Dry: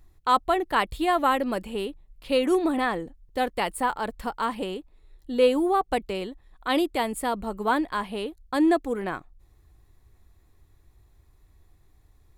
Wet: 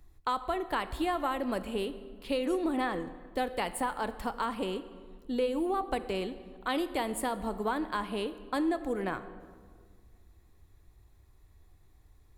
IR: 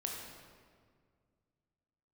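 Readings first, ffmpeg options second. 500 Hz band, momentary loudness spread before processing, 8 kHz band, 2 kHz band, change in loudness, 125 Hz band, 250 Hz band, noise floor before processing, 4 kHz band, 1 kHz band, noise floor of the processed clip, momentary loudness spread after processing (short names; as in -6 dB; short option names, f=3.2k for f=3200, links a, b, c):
-7.0 dB, 12 LU, -3.5 dB, -7.0 dB, -7.0 dB, -2.5 dB, -6.0 dB, -60 dBFS, -6.5 dB, -7.5 dB, -60 dBFS, 8 LU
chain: -filter_complex "[0:a]acrossover=split=120[a][b];[b]acompressor=threshold=-26dB:ratio=6[c];[a][c]amix=inputs=2:normalize=0,asplit=2[d][e];[1:a]atrim=start_sample=2205,asetrate=48510,aresample=44100[f];[e][f]afir=irnorm=-1:irlink=0,volume=-7.5dB[g];[d][g]amix=inputs=2:normalize=0,volume=-4dB"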